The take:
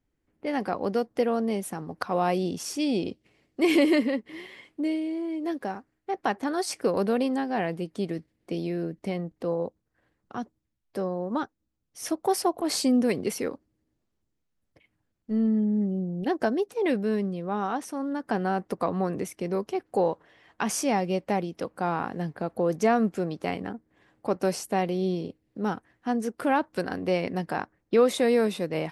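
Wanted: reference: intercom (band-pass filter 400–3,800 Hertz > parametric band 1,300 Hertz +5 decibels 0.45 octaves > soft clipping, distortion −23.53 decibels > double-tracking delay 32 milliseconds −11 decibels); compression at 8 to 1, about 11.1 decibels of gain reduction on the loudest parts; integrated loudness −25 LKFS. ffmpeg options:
ffmpeg -i in.wav -filter_complex "[0:a]acompressor=threshold=-28dB:ratio=8,highpass=400,lowpass=3800,equalizer=frequency=1300:width_type=o:width=0.45:gain=5,asoftclip=threshold=-20dB,asplit=2[link_01][link_02];[link_02]adelay=32,volume=-11dB[link_03];[link_01][link_03]amix=inputs=2:normalize=0,volume=12dB" out.wav

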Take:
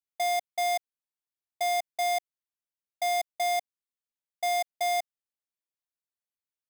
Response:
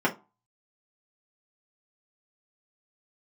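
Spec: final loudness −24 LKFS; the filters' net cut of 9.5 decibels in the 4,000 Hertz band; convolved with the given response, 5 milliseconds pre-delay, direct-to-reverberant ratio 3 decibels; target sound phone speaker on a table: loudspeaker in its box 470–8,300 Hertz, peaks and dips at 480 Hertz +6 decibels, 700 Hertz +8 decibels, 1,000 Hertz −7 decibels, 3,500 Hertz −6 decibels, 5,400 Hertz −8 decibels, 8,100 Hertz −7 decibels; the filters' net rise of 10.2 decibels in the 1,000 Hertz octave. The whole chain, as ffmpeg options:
-filter_complex "[0:a]equalizer=frequency=1000:width_type=o:gain=5.5,equalizer=frequency=4000:width_type=o:gain=-4,asplit=2[link_01][link_02];[1:a]atrim=start_sample=2205,adelay=5[link_03];[link_02][link_03]afir=irnorm=-1:irlink=0,volume=-16.5dB[link_04];[link_01][link_04]amix=inputs=2:normalize=0,highpass=frequency=470:width=0.5412,highpass=frequency=470:width=1.3066,equalizer=frequency=480:width_type=q:width=4:gain=6,equalizer=frequency=700:width_type=q:width=4:gain=8,equalizer=frequency=1000:width_type=q:width=4:gain=-7,equalizer=frequency=3500:width_type=q:width=4:gain=-6,equalizer=frequency=5400:width_type=q:width=4:gain=-8,equalizer=frequency=8100:width_type=q:width=4:gain=-7,lowpass=frequency=8300:width=0.5412,lowpass=frequency=8300:width=1.3066,volume=-6dB"

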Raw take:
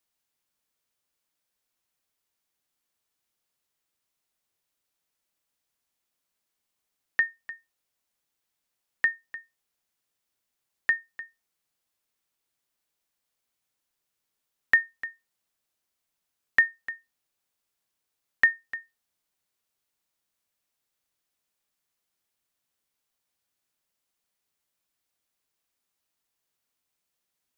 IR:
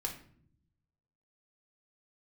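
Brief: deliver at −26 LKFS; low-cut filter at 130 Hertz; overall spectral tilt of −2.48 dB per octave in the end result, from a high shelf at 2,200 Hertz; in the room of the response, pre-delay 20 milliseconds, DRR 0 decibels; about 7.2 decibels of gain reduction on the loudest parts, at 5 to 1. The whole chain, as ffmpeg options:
-filter_complex "[0:a]highpass=130,highshelf=frequency=2200:gain=7,acompressor=threshold=-20dB:ratio=5,asplit=2[link_01][link_02];[1:a]atrim=start_sample=2205,adelay=20[link_03];[link_02][link_03]afir=irnorm=-1:irlink=0,volume=-1dB[link_04];[link_01][link_04]amix=inputs=2:normalize=0,volume=2dB"

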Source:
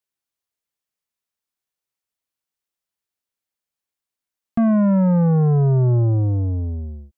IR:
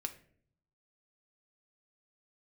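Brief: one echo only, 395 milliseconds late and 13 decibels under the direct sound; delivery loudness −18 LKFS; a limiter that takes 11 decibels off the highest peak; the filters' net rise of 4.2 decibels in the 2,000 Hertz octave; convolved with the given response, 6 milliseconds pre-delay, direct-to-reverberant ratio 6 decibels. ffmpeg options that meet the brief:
-filter_complex "[0:a]equalizer=frequency=2000:width_type=o:gain=6,alimiter=level_in=1dB:limit=-24dB:level=0:latency=1,volume=-1dB,aecho=1:1:395:0.224,asplit=2[link_01][link_02];[1:a]atrim=start_sample=2205,adelay=6[link_03];[link_02][link_03]afir=irnorm=-1:irlink=0,volume=-5dB[link_04];[link_01][link_04]amix=inputs=2:normalize=0,volume=8.5dB"

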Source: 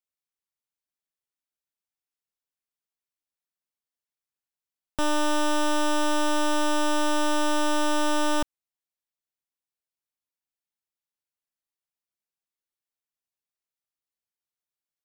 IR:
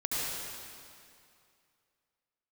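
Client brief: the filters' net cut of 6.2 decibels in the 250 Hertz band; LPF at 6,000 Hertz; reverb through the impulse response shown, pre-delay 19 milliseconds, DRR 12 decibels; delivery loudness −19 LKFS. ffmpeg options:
-filter_complex "[0:a]lowpass=6000,equalizer=frequency=250:width_type=o:gain=-8,asplit=2[link_01][link_02];[1:a]atrim=start_sample=2205,adelay=19[link_03];[link_02][link_03]afir=irnorm=-1:irlink=0,volume=-19.5dB[link_04];[link_01][link_04]amix=inputs=2:normalize=0,volume=8dB"

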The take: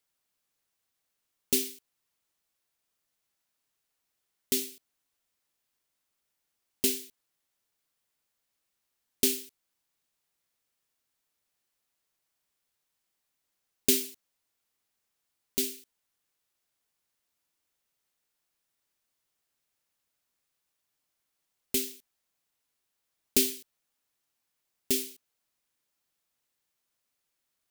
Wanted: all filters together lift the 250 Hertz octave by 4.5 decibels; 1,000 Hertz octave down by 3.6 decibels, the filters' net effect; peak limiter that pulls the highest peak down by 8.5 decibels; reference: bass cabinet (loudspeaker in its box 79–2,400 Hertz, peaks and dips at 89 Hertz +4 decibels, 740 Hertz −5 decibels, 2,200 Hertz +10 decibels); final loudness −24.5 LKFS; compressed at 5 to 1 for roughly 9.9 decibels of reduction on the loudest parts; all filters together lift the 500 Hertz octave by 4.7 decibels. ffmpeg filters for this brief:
ffmpeg -i in.wav -af "equalizer=frequency=250:width_type=o:gain=3.5,equalizer=frequency=500:width_type=o:gain=6,equalizer=frequency=1000:width_type=o:gain=-5,acompressor=threshold=-29dB:ratio=5,alimiter=limit=-17.5dB:level=0:latency=1,highpass=frequency=79:width=0.5412,highpass=frequency=79:width=1.3066,equalizer=frequency=89:width_type=q:width=4:gain=4,equalizer=frequency=740:width_type=q:width=4:gain=-5,equalizer=frequency=2200:width_type=q:width=4:gain=10,lowpass=frequency=2400:width=0.5412,lowpass=frequency=2400:width=1.3066,volume=20dB" out.wav

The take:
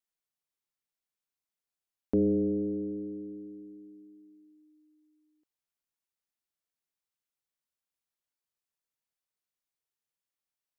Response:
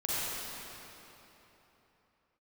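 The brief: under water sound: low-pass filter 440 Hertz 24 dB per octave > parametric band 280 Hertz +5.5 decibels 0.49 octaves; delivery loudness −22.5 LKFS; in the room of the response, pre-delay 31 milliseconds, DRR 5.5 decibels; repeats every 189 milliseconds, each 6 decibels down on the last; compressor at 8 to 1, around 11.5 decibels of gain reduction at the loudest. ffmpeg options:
-filter_complex "[0:a]acompressor=threshold=-35dB:ratio=8,aecho=1:1:189|378|567|756|945|1134:0.501|0.251|0.125|0.0626|0.0313|0.0157,asplit=2[link_01][link_02];[1:a]atrim=start_sample=2205,adelay=31[link_03];[link_02][link_03]afir=irnorm=-1:irlink=0,volume=-13.5dB[link_04];[link_01][link_04]amix=inputs=2:normalize=0,lowpass=frequency=440:width=0.5412,lowpass=frequency=440:width=1.3066,equalizer=frequency=280:width_type=o:width=0.49:gain=5.5,volume=12dB"

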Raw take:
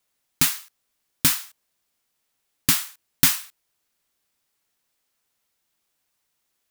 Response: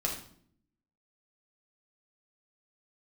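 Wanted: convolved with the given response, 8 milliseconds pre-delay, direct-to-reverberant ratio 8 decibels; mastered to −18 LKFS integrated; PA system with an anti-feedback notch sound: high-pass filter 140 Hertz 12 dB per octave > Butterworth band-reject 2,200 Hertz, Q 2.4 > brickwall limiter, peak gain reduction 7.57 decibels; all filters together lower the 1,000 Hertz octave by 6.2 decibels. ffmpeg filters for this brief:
-filter_complex "[0:a]equalizer=frequency=1000:width_type=o:gain=-8.5,asplit=2[link_01][link_02];[1:a]atrim=start_sample=2205,adelay=8[link_03];[link_02][link_03]afir=irnorm=-1:irlink=0,volume=-13dB[link_04];[link_01][link_04]amix=inputs=2:normalize=0,highpass=140,asuperstop=centerf=2200:order=8:qfactor=2.4,volume=7dB,alimiter=limit=-3dB:level=0:latency=1"

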